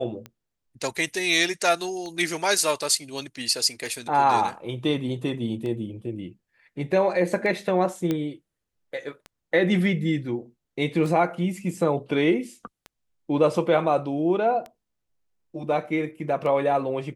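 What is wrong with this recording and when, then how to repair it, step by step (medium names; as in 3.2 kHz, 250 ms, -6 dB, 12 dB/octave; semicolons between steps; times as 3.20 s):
tick 33 1/3 rpm -23 dBFS
8.11 s: pop -13 dBFS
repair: de-click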